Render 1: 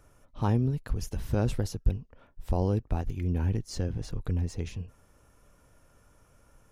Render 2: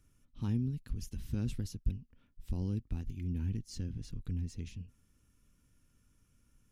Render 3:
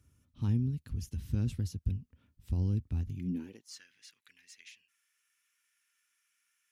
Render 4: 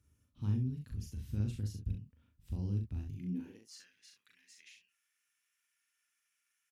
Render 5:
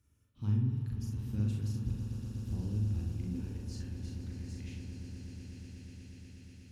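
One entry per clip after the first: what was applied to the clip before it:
FFT filter 150 Hz 0 dB, 240 Hz +3 dB, 640 Hz -18 dB, 2.8 kHz 0 dB; trim -7.5 dB
high-pass sweep 77 Hz -> 1.9 kHz, 3.07–3.85 s
early reflections 39 ms -3.5 dB, 66 ms -7.5 dB; trim -6.5 dB
echo with a slow build-up 121 ms, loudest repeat 8, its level -12.5 dB; spring tank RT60 1.6 s, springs 48 ms, chirp 65 ms, DRR 4 dB

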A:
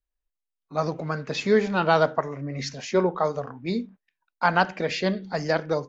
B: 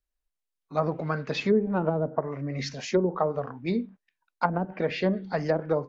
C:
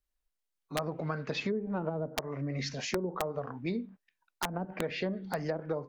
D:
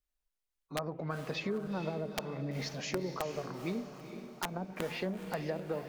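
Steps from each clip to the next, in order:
low-pass that closes with the level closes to 380 Hz, closed at -17 dBFS
compression 4:1, threshold -31 dBFS, peak gain reduction 11.5 dB; integer overflow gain 21 dB
echo that smears into a reverb 455 ms, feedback 49%, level -9.5 dB; trim -3 dB

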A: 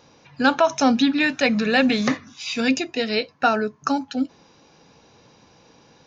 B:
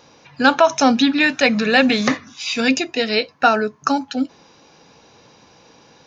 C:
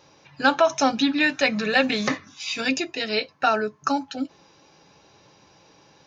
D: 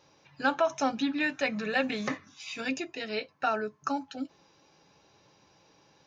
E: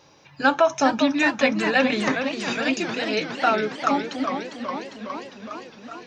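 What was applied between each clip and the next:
bass shelf 280 Hz -5 dB; trim +5 dB
comb of notches 240 Hz; trim -4 dB
dynamic bell 4.6 kHz, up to -6 dB, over -40 dBFS, Q 1.2; trim -7.5 dB
modulated delay 407 ms, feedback 72%, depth 185 cents, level -8 dB; trim +8 dB

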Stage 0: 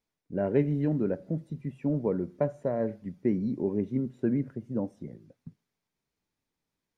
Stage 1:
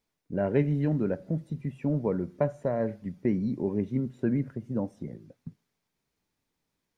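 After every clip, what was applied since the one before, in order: dynamic bell 350 Hz, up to -5 dB, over -39 dBFS, Q 0.73; trim +4 dB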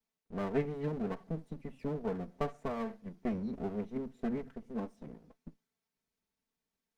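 comb filter that takes the minimum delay 4.5 ms; trim -7 dB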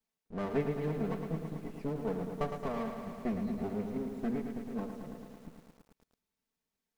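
bit-crushed delay 110 ms, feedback 80%, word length 10-bit, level -7 dB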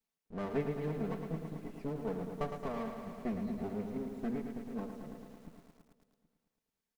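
delay 773 ms -23.5 dB; trim -2.5 dB

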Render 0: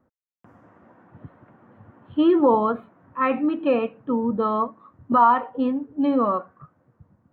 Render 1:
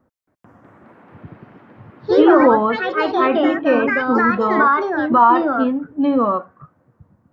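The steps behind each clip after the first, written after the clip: ever faster or slower copies 273 ms, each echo +3 st, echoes 3; trim +4 dB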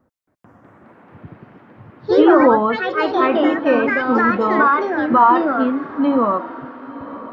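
echo that smears into a reverb 1000 ms, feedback 41%, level -16 dB

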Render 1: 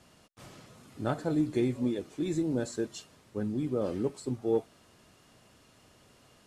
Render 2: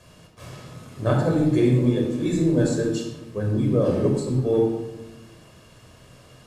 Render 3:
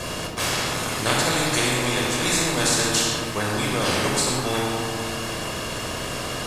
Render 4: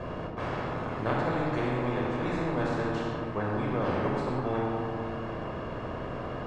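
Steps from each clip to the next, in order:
simulated room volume 3700 m³, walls furnished, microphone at 5.5 m; trim +4.5 dB
spectrum-flattening compressor 4:1
low-pass 1.2 kHz 12 dB/octave; trim -4 dB

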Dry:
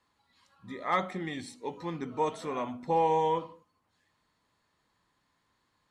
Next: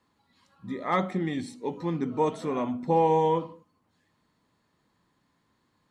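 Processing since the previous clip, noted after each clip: peaking EQ 210 Hz +9 dB 2.5 oct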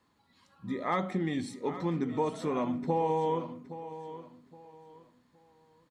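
compression 3:1, threshold -27 dBFS, peak gain reduction 7.5 dB; feedback delay 818 ms, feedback 28%, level -13.5 dB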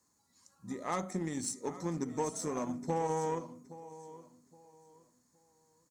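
resonant high shelf 4.6 kHz +13 dB, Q 3; Chebyshev shaper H 7 -26 dB, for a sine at -16 dBFS; trim -3.5 dB

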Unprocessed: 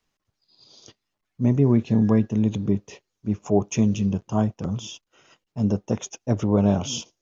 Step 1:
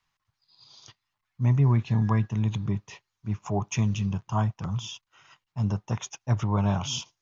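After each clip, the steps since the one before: ten-band graphic EQ 125 Hz +8 dB, 250 Hz -7 dB, 500 Hz -9 dB, 1 kHz +10 dB, 2 kHz +5 dB, 4 kHz +4 dB; trim -5 dB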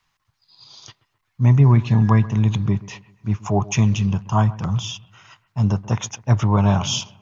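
bucket-brigade echo 131 ms, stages 2048, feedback 42%, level -19 dB; trim +8 dB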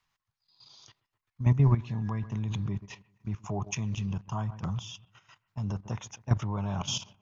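level held to a coarse grid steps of 12 dB; trim -7 dB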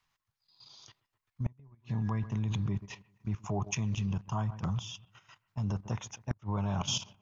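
inverted gate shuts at -18 dBFS, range -35 dB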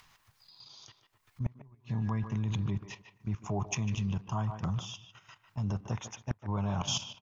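upward compressor, threshold -48 dBFS; speakerphone echo 150 ms, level -9 dB

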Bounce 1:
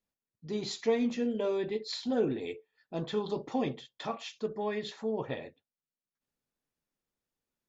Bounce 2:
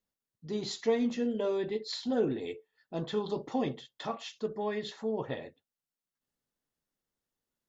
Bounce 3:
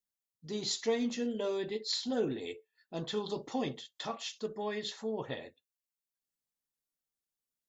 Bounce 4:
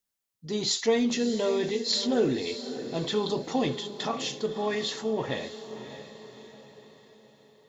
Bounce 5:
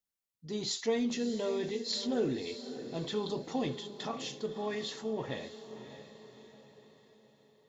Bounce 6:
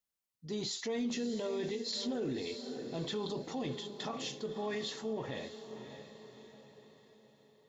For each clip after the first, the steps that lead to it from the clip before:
band-stop 2.4 kHz, Q 10
spectral noise reduction 9 dB; treble shelf 3.3 kHz +12 dB; trim -3.5 dB
transient shaper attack 0 dB, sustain +4 dB; echo that smears into a reverb 605 ms, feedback 48%, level -11.5 dB; trim +7 dB
bass shelf 350 Hz +3 dB; trim -8 dB
peak limiter -28.5 dBFS, peak gain reduction 8.5 dB

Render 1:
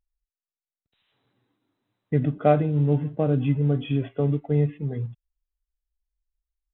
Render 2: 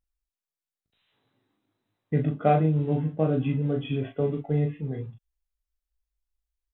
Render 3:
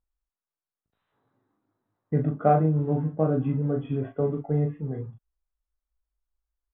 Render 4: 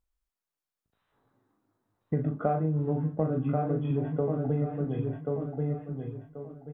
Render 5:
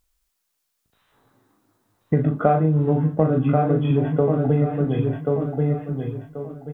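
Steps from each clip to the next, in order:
early reflections 19 ms -8 dB, 38 ms -5 dB; trim -2.5 dB
resonant high shelf 1.9 kHz -12 dB, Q 1.5
feedback delay 1084 ms, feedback 27%, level -6 dB; compression 5:1, threshold -26 dBFS, peak gain reduction 10.5 dB; trim +1.5 dB
treble shelf 2.2 kHz +8.5 dB; trim +9 dB

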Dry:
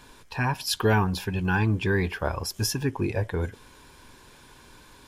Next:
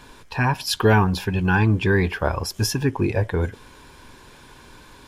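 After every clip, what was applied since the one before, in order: treble shelf 5.3 kHz -5 dB; trim +5.5 dB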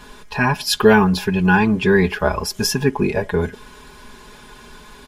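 comb 4.8 ms, depth 77%; trim +2.5 dB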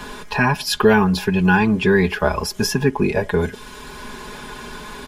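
three bands compressed up and down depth 40%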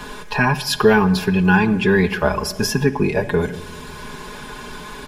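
simulated room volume 2300 m³, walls mixed, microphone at 0.45 m

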